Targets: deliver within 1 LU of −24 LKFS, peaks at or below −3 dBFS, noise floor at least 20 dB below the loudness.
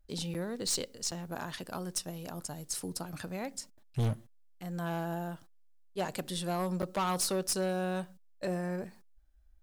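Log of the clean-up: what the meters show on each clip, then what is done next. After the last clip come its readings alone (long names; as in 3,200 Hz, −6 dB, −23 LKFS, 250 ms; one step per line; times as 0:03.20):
share of clipped samples 1.1%; peaks flattened at −26.5 dBFS; number of dropouts 3; longest dropout 7.6 ms; integrated loudness −35.5 LKFS; sample peak −26.5 dBFS; target loudness −24.0 LKFS
→ clipped peaks rebuilt −26.5 dBFS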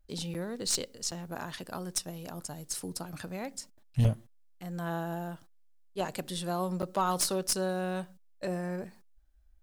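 share of clipped samples 0.0%; number of dropouts 3; longest dropout 7.6 ms
→ repair the gap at 0:00.34/0:01.11/0:06.82, 7.6 ms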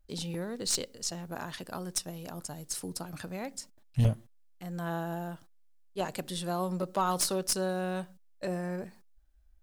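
number of dropouts 0; integrated loudness −34.0 LKFS; sample peak −17.5 dBFS; target loudness −24.0 LKFS
→ level +10 dB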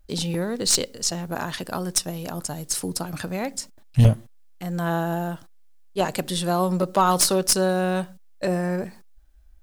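integrated loudness −24.0 LKFS; sample peak −7.5 dBFS; background noise floor −49 dBFS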